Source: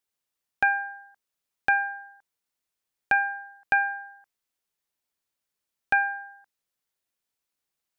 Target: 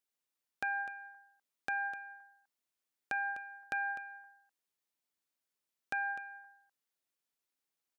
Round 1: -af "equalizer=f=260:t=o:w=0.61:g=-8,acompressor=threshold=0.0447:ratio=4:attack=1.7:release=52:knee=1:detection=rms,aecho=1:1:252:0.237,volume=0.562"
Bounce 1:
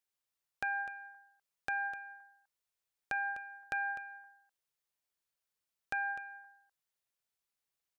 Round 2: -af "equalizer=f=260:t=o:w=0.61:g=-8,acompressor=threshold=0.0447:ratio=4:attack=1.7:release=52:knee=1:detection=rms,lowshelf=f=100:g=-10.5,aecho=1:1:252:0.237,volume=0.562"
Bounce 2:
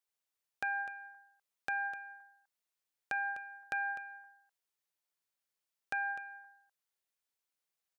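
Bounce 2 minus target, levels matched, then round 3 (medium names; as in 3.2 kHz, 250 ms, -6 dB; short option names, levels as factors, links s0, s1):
250 Hz band -3.5 dB
-af "equalizer=f=260:t=o:w=0.61:g=3.5,acompressor=threshold=0.0447:ratio=4:attack=1.7:release=52:knee=1:detection=rms,lowshelf=f=100:g=-10.5,aecho=1:1:252:0.237,volume=0.562"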